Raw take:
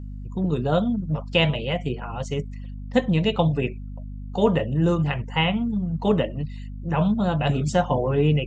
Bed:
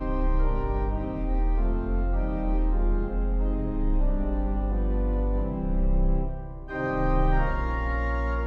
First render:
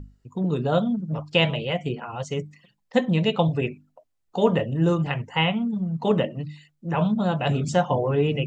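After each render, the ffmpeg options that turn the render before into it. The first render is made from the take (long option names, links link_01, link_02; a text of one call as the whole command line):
ffmpeg -i in.wav -af "bandreject=frequency=50:width_type=h:width=6,bandreject=frequency=100:width_type=h:width=6,bandreject=frequency=150:width_type=h:width=6,bandreject=frequency=200:width_type=h:width=6,bandreject=frequency=250:width_type=h:width=6,bandreject=frequency=300:width_type=h:width=6" out.wav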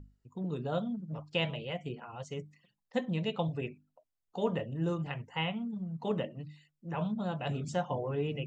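ffmpeg -i in.wav -af "volume=-11.5dB" out.wav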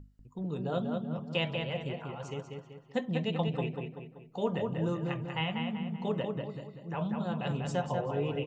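ffmpeg -i in.wav -filter_complex "[0:a]asplit=2[link_01][link_02];[link_02]adelay=192,lowpass=frequency=3700:poles=1,volume=-4dB,asplit=2[link_03][link_04];[link_04]adelay=192,lowpass=frequency=3700:poles=1,volume=0.47,asplit=2[link_05][link_06];[link_06]adelay=192,lowpass=frequency=3700:poles=1,volume=0.47,asplit=2[link_07][link_08];[link_08]adelay=192,lowpass=frequency=3700:poles=1,volume=0.47,asplit=2[link_09][link_10];[link_10]adelay=192,lowpass=frequency=3700:poles=1,volume=0.47,asplit=2[link_11][link_12];[link_12]adelay=192,lowpass=frequency=3700:poles=1,volume=0.47[link_13];[link_01][link_03][link_05][link_07][link_09][link_11][link_13]amix=inputs=7:normalize=0" out.wav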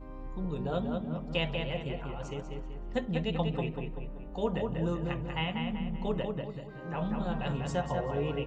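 ffmpeg -i in.wav -i bed.wav -filter_complex "[1:a]volume=-17.5dB[link_01];[0:a][link_01]amix=inputs=2:normalize=0" out.wav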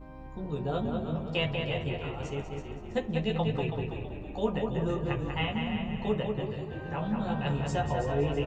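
ffmpeg -i in.wav -filter_complex "[0:a]asplit=2[link_01][link_02];[link_02]adelay=14,volume=-3.5dB[link_03];[link_01][link_03]amix=inputs=2:normalize=0,asplit=6[link_04][link_05][link_06][link_07][link_08][link_09];[link_05]adelay=327,afreqshift=-50,volume=-8.5dB[link_10];[link_06]adelay=654,afreqshift=-100,volume=-15.6dB[link_11];[link_07]adelay=981,afreqshift=-150,volume=-22.8dB[link_12];[link_08]adelay=1308,afreqshift=-200,volume=-29.9dB[link_13];[link_09]adelay=1635,afreqshift=-250,volume=-37dB[link_14];[link_04][link_10][link_11][link_12][link_13][link_14]amix=inputs=6:normalize=0" out.wav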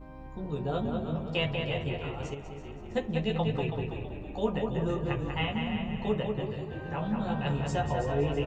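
ffmpeg -i in.wav -filter_complex "[0:a]asettb=1/sr,asplit=3[link_01][link_02][link_03];[link_01]atrim=end=2.344[link_04];[link_02]atrim=start=2.34:end=2.92,asetpts=PTS-STARTPTS,afade=type=in:duration=0.004:curve=qsin,afade=type=out:start_time=0.576:duration=0.004:curve=qsin,acompressor=threshold=-37dB:ratio=6:attack=3.2:release=140:knee=1:detection=peak[link_05];[link_03]atrim=start=2.916[link_06];[link_04][link_05]acrossfade=duration=0.004:curve1=hsin:curve2=qsin[link_07];[link_07][link_06]acrossfade=duration=0.004:curve1=qsin:curve2=hsin" out.wav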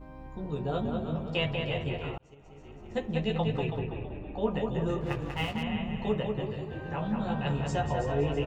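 ffmpeg -i in.wav -filter_complex "[0:a]asettb=1/sr,asplit=3[link_01][link_02][link_03];[link_01]atrim=end=3.794[link_04];[link_02]atrim=start=3.79:end=4.51,asetpts=PTS-STARTPTS,afade=type=in:duration=0.004:curve=qsin,afade=type=out:start_time=0.716:duration=0.004:curve=qsin,lowpass=2900[link_05];[link_03]atrim=start=4.506[link_06];[link_04][link_05]acrossfade=duration=0.004:curve1=hsin:curve2=qsin[link_07];[link_07][link_06]acrossfade=duration=0.004:curve1=qsin:curve2=hsin,asettb=1/sr,asplit=3[link_08][link_09][link_10];[link_08]atrim=end=5.014[link_11];[link_09]atrim=start=5.01:end=5.63,asetpts=PTS-STARTPTS,afade=type=in:duration=0.004:curve=qsin,afade=type=out:start_time=0.616:duration=0.004:curve=qsin,aeval=exprs='sgn(val(0))*max(abs(val(0))-0.00631,0)':channel_layout=same[link_12];[link_10]atrim=start=5.626[link_13];[link_11][link_12]acrossfade=duration=0.004:curve1=hsin:curve2=qsin[link_14];[link_14][link_13]acrossfade=duration=0.004:curve1=qsin:curve2=hsin,asplit=2[link_15][link_16];[link_15]atrim=end=2.18,asetpts=PTS-STARTPTS,afade=type=out:start_time=2.176:duration=0.004:curve=hsin[link_17];[link_16]atrim=start=2.18,asetpts=PTS-STARTPTS,afade=type=in:duration=0.97[link_18];[link_17][link_18]concat=n=2:v=0:a=1" out.wav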